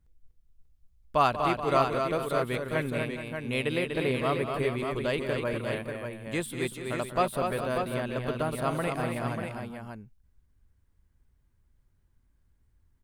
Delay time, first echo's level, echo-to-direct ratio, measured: 0.187 s, -12.5 dB, -2.0 dB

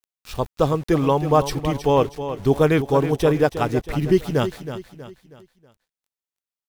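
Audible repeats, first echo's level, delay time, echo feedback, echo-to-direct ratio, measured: 4, -11.0 dB, 0.32 s, 41%, -10.0 dB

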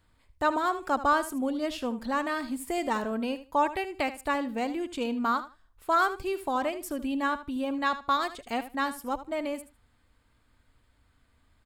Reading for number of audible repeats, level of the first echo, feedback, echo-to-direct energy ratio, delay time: 2, -13.5 dB, 17%, -13.5 dB, 77 ms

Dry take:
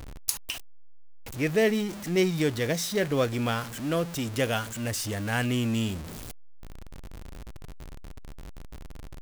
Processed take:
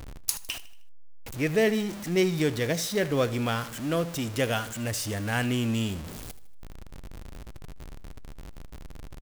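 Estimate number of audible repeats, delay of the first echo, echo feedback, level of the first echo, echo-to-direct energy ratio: 3, 78 ms, 47%, -17.0 dB, -16.0 dB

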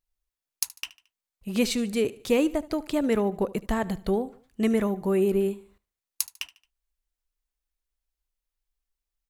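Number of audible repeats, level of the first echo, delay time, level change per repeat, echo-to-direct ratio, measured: 3, -19.5 dB, 74 ms, -7.5 dB, -18.5 dB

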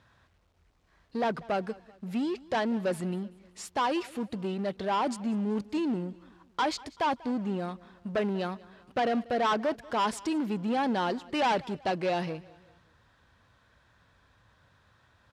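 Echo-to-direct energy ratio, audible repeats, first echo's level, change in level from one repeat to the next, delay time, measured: -21.0 dB, 2, -22.0 dB, -7.0 dB, 0.191 s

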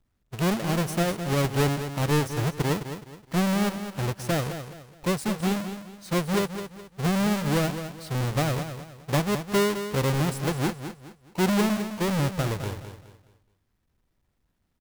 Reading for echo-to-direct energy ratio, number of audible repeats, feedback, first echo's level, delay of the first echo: -9.5 dB, 3, 33%, -10.0 dB, 0.21 s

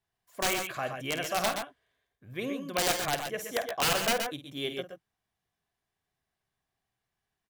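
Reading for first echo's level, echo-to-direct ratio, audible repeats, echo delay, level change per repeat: -11.0 dB, -5.0 dB, 2, 50 ms, no steady repeat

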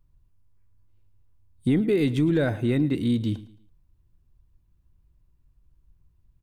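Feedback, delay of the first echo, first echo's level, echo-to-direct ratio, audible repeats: 34%, 0.111 s, -18.0 dB, -17.5 dB, 2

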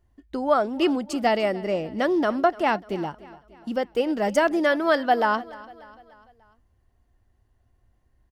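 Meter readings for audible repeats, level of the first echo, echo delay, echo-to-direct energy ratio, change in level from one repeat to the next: 3, -20.0 dB, 0.295 s, -18.5 dB, -6.0 dB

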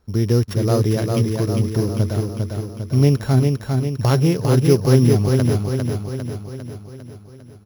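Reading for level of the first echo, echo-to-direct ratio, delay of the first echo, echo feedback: -4.0 dB, -2.5 dB, 0.401 s, 56%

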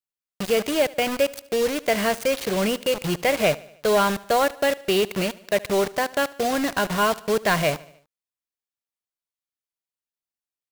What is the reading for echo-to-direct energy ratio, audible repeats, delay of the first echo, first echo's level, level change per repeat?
-19.5 dB, 3, 74 ms, -21.0 dB, -5.0 dB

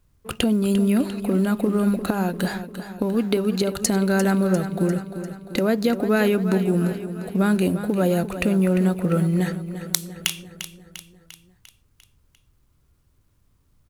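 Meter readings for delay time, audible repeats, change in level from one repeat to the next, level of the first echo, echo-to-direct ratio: 0.348 s, 5, -5.0 dB, -11.0 dB, -9.5 dB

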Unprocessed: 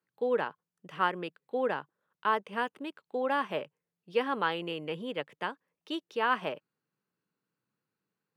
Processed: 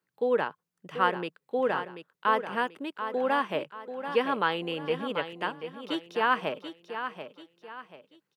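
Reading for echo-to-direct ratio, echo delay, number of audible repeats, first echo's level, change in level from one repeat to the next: -9.0 dB, 0.736 s, 3, -9.5 dB, -9.0 dB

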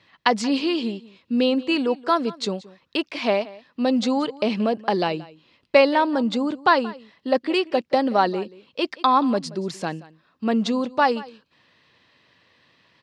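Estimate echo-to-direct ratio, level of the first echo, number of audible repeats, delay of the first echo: -20.0 dB, -20.0 dB, 1, 0.178 s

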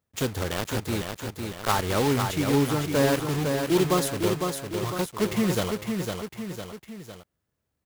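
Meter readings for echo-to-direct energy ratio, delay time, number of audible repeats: -3.5 dB, 0.505 s, 3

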